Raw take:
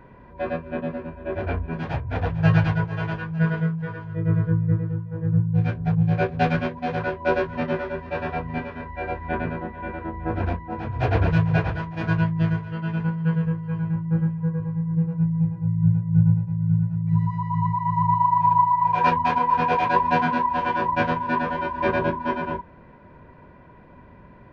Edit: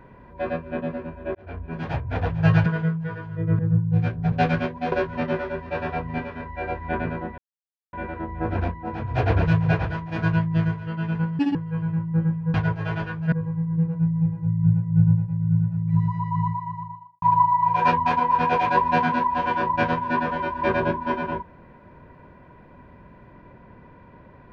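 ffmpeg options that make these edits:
-filter_complex "[0:a]asplit=12[s0][s1][s2][s3][s4][s5][s6][s7][s8][s9][s10][s11];[s0]atrim=end=1.35,asetpts=PTS-STARTPTS,afade=t=out:st=1.346:d=0.004:c=hsin[s12];[s1]atrim=start=1.35:end=2.662,asetpts=PTS-STARTPTS,afade=t=in:d=0.53[s13];[s2]atrim=start=3.438:end=4.372[s14];[s3]atrim=start=5.208:end=5.942[s15];[s4]atrim=start=6.328:end=6.932[s16];[s5]atrim=start=7.318:end=9.78,asetpts=PTS-STARTPTS,afade=t=out:st=2.458:d=0.004:c=hsin,apad=pad_dur=0.55[s17];[s6]atrim=start=9.78:end=13.244,asetpts=PTS-STARTPTS,afade=t=in:d=0.004:c=hsin[s18];[s7]atrim=start=13.24:end=13.52,asetpts=PTS-STARTPTS,asetrate=76734,aresample=44100[s19];[s8]atrim=start=13.516:end=14.512[s20];[s9]atrim=start=2.658:end=3.442[s21];[s10]atrim=start=14.508:end=18.41,asetpts=PTS-STARTPTS,afade=t=out:st=3.072:d=0.83:c=qua[s22];[s11]atrim=start=18.41,asetpts=PTS-STARTPTS,afade=t=in:d=0.004:c=hsin[s23];[s12][s13]concat=n=2:v=0:a=1[s24];[s24][s14]acrossfade=d=0.004:c1=hsin:c2=hsin[s25];[s25][s15]acrossfade=d=0.004:c1=hsin:c2=hsin[s26];[s26][s16]acrossfade=d=0.004:c1=hsin:c2=hsin[s27];[s17][s18]concat=n=2:v=0:a=1[s28];[s27][s28]acrossfade=d=0.004:c1=hsin:c2=hsin[s29];[s29][s19]acrossfade=d=0.004:c1=hsin:c2=hsin[s30];[s30][s20]acrossfade=d=0.004:c1=hsin:c2=hsin[s31];[s31][s21]acrossfade=d=0.004:c1=hsin:c2=hsin[s32];[s22][s23]concat=n=2:v=0:a=1[s33];[s32][s33]acrossfade=d=0.004:c1=hsin:c2=hsin"

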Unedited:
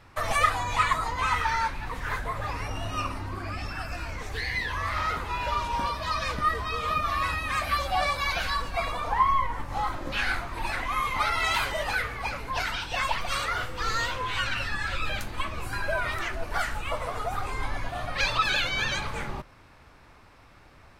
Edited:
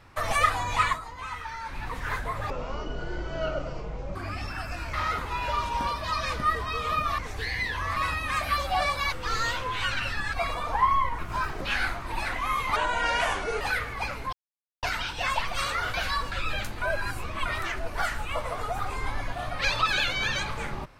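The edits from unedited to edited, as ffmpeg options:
-filter_complex "[0:a]asplit=19[s0][s1][s2][s3][s4][s5][s6][s7][s8][s9][s10][s11][s12][s13][s14][s15][s16][s17][s18];[s0]atrim=end=1,asetpts=PTS-STARTPTS,afade=t=out:st=0.88:d=0.12:silence=0.298538[s19];[s1]atrim=start=1:end=1.65,asetpts=PTS-STARTPTS,volume=0.299[s20];[s2]atrim=start=1.65:end=2.504,asetpts=PTS-STARTPTS,afade=t=in:d=0.12:silence=0.298538[s21];[s3]atrim=start=2.5:end=3.36,asetpts=PTS-STARTPTS,asetrate=22932,aresample=44100[s22];[s4]atrim=start=3.356:end=4.142[s23];[s5]atrim=start=4.918:end=7.172[s24];[s6]atrim=start=4.138:end=4.922[s25];[s7]atrim=start=7.168:end=8.332[s26];[s8]atrim=start=13.668:end=14.882[s27];[s9]atrim=start=8.708:end=9.564[s28];[s10]atrim=start=9.56:end=10.08,asetpts=PTS-STARTPTS,asetrate=53802,aresample=44100[s29];[s11]atrim=start=10.076:end=11.234[s30];[s12]atrim=start=11.23:end=11.84,asetpts=PTS-STARTPTS,asetrate=31752,aresample=44100,atrim=end_sample=37362,asetpts=PTS-STARTPTS[s31];[s13]atrim=start=11.836:end=12.56,asetpts=PTS-STARTPTS,afade=t=out:st=0.72:d=0.004:c=hsin,apad=pad_dur=0.5[s32];[s14]atrim=start=12.56:end=13.672,asetpts=PTS-STARTPTS,afade=t=in:d=0.004:c=hsin[s33];[s15]atrim=start=8.328:end=8.712[s34];[s16]atrim=start=14.878:end=15.382[s35];[s17]atrim=start=15.378:end=16.022,asetpts=PTS-STARTPTS,areverse[s36];[s18]atrim=start=16.018[s37];[s19][s20][s21]concat=n=3:v=0:a=1[s38];[s38][s22]acrossfade=d=0.004:c1=hsin:c2=hsin[s39];[s39][s23]acrossfade=d=0.004:c1=hsin:c2=hsin[s40];[s40][s24]acrossfade=d=0.004:c1=hsin:c2=hsin[s41];[s41][s25]acrossfade=d=0.004:c1=hsin:c2=hsin[s42];[s42][s26]acrossfade=d=0.004:c1=hsin:c2=hsin[s43];[s43][s27]acrossfade=d=0.004:c1=hsin:c2=hsin[s44];[s44][s28]acrossfade=d=0.004:c1=hsin:c2=hsin[s45];[s45][s29]acrossfade=d=0.004:c1=hsin:c2=hsin[s46];[s46][s30]acrossfade=d=0.004:c1=hsin:c2=hsin[s47];[s47][s31]acrossfade=d=0.004:c1=hsin:c2=hsin[s48];[s32][s33]concat=n=2:v=0:a=1[s49];[s48][s49]acrossfade=d=0.004:c1=hsin:c2=hsin[s50];[s50][s34]acrossfade=d=0.004:c1=hsin:c2=hsin[s51];[s51][s35]acrossfade=d=0.004:c1=hsin:c2=hsin[s52];[s52][s36]acrossfade=d=0.004:c1=hsin:c2=hsin[s53];[s53][s37]acrossfade=d=0.004:c1=hsin:c2=hsin"

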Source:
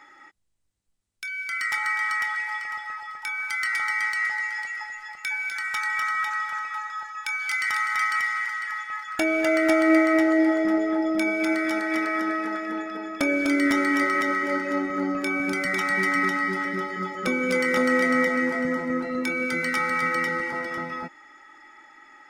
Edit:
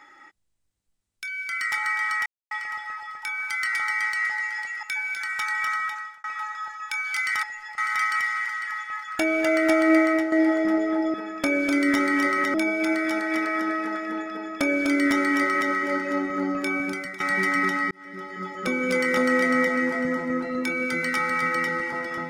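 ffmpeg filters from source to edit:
-filter_complex "[0:a]asplit=12[s0][s1][s2][s3][s4][s5][s6][s7][s8][s9][s10][s11];[s0]atrim=end=2.26,asetpts=PTS-STARTPTS,afade=t=out:st=2.256:d=0.004:c=hsin[s12];[s1]atrim=start=2.26:end=2.51,asetpts=PTS-STARTPTS,volume=0[s13];[s2]atrim=start=2.51:end=4.832,asetpts=PTS-STARTPTS,afade=t=in:d=0.004:c=hsin[s14];[s3]atrim=start=5.178:end=6.59,asetpts=PTS-STARTPTS,afade=t=out:st=0.912:d=0.5[s15];[s4]atrim=start=6.59:end=7.782,asetpts=PTS-STARTPTS,afade=t=in:d=0.004:c=hsin[s16];[s5]atrim=start=4.828:end=5.182[s17];[s6]atrim=start=7.778:end=10.32,asetpts=PTS-STARTPTS,afade=t=out:st=2.282:d=0.26:silence=0.375837[s18];[s7]atrim=start=10.32:end=11.142,asetpts=PTS-STARTPTS,afade=t=in:d=0.004:c=hsin:silence=0.375837[s19];[s8]atrim=start=12.908:end=14.312[s20];[s9]atrim=start=11.138:end=15.8,asetpts=PTS-STARTPTS,afade=t=out:st=4.222:d=0.44:silence=0.141254[s21];[s10]atrim=start=15.8:end=16.51,asetpts=PTS-STARTPTS,afade=t=in:d=0.004:c=hsin:silence=0.141254,afade=t=out:st=0.706:d=0.004:c=hsin[s22];[s11]atrim=start=16.51,asetpts=PTS-STARTPTS,afade=t=in:d=1.12:c=qsin[s23];[s12][s13][s14]concat=n=3:v=0:a=1[s24];[s15][s16]concat=n=2:v=0:a=1[s25];[s24][s25]acrossfade=d=0.004:c1=hsin:c2=hsin[s26];[s26][s17]acrossfade=d=0.004:c1=hsin:c2=hsin[s27];[s18][s19]concat=n=2:v=0:a=1[s28];[s27][s28]acrossfade=d=0.004:c1=hsin:c2=hsin[s29];[s29][s20]acrossfade=d=0.004:c1=hsin:c2=hsin[s30];[s21][s22][s23]concat=n=3:v=0:a=1[s31];[s30][s31]acrossfade=d=0.004:c1=hsin:c2=hsin"

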